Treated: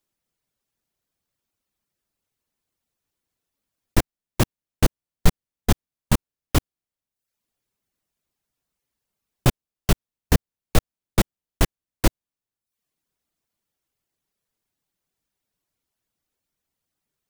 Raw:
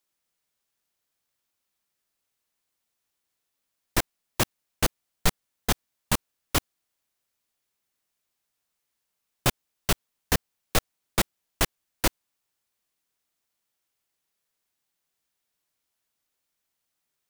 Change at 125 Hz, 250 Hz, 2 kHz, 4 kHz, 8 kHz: +9.5, +7.5, -1.0, -1.5, -1.5 dB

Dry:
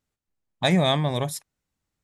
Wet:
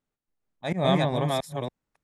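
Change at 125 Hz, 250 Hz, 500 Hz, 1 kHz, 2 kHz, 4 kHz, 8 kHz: -2.5, -2.5, 0.0, -0.5, -4.5, -6.5, -8.5 dB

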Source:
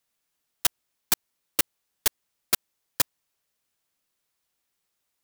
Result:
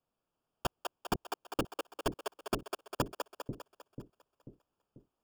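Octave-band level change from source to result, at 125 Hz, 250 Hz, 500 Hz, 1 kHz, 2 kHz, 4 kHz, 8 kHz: +5.5, +5.0, +4.5, +1.0, -9.0, -12.0, -19.5 dB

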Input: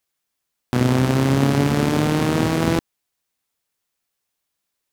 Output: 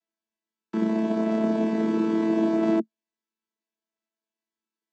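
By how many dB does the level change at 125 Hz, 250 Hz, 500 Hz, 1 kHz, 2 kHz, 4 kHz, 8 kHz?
-19.0 dB, -3.0 dB, -3.5 dB, -9.0 dB, -12.5 dB, under -15 dB, under -20 dB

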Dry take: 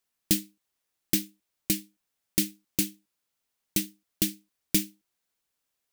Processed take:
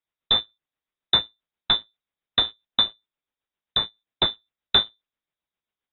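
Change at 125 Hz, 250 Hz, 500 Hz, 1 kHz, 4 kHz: -3.0, -10.0, +6.5, +24.5, +16.5 dB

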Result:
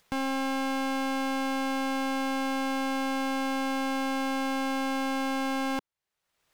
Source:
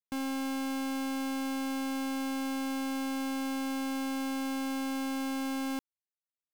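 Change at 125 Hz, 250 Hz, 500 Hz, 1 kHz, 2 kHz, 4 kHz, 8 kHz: n/a, +2.0 dB, +8.0 dB, +8.5 dB, +7.5 dB, +5.0 dB, +1.0 dB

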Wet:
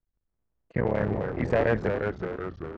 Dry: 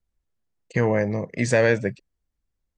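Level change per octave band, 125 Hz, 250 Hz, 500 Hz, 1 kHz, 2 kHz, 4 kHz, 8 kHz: -3.5 dB, -3.5 dB, -3.5 dB, -0.5 dB, -6.5 dB, -9.0 dB, under -25 dB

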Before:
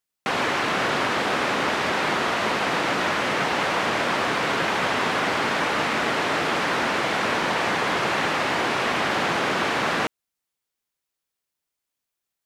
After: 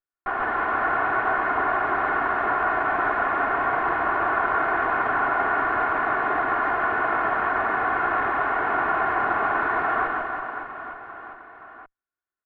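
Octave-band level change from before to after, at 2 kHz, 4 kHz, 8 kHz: 0.0 dB, under -20 dB, under -40 dB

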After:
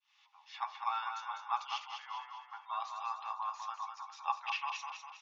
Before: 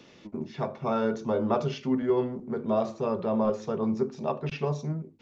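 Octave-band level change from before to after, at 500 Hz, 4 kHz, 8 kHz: -35.0 dB, +1.5 dB, n/a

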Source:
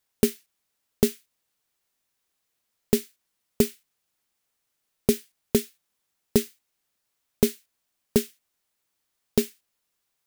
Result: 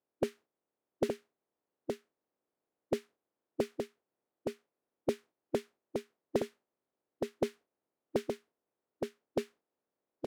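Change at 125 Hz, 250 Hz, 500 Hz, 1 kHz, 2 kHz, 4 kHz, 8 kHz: -14.0, -12.0, -7.5, +0.5, -8.0, -14.0, -20.5 dB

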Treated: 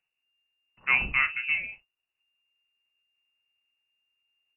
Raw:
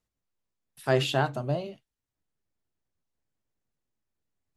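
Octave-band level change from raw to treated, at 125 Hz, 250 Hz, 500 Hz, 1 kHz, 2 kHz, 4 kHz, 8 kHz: -17.5 dB, -14.5 dB, -25.0 dB, -4.5 dB, +11.0 dB, -5.0 dB, under -30 dB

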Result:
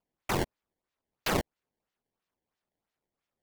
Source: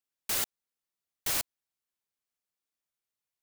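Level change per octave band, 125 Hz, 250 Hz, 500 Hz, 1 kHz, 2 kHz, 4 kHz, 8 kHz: +15.5, +15.5, +13.0, +9.5, +4.0, -2.0, -8.5 dB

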